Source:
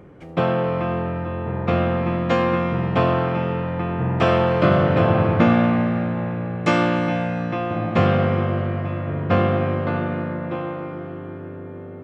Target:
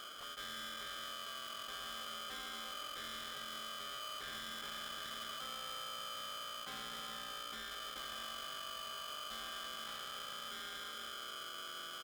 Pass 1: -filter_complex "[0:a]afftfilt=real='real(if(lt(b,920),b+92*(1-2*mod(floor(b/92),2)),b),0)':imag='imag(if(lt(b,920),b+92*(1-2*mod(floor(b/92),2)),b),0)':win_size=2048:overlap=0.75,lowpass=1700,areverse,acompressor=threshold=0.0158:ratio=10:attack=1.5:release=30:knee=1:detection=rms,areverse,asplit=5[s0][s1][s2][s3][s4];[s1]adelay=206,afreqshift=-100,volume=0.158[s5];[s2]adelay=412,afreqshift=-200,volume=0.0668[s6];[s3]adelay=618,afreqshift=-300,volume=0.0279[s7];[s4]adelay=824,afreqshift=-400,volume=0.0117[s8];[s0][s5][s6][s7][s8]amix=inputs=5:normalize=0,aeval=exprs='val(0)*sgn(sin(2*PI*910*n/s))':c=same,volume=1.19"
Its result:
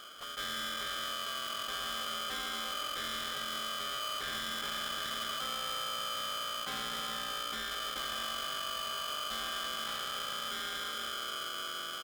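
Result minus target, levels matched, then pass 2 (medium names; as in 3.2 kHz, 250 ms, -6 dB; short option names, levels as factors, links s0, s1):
compression: peak gain reduction -8 dB
-filter_complex "[0:a]afftfilt=real='real(if(lt(b,920),b+92*(1-2*mod(floor(b/92),2)),b),0)':imag='imag(if(lt(b,920),b+92*(1-2*mod(floor(b/92),2)),b),0)':win_size=2048:overlap=0.75,lowpass=1700,areverse,acompressor=threshold=0.00562:ratio=10:attack=1.5:release=30:knee=1:detection=rms,areverse,asplit=5[s0][s1][s2][s3][s4];[s1]adelay=206,afreqshift=-100,volume=0.158[s5];[s2]adelay=412,afreqshift=-200,volume=0.0668[s6];[s3]adelay=618,afreqshift=-300,volume=0.0279[s7];[s4]adelay=824,afreqshift=-400,volume=0.0117[s8];[s0][s5][s6][s7][s8]amix=inputs=5:normalize=0,aeval=exprs='val(0)*sgn(sin(2*PI*910*n/s))':c=same,volume=1.19"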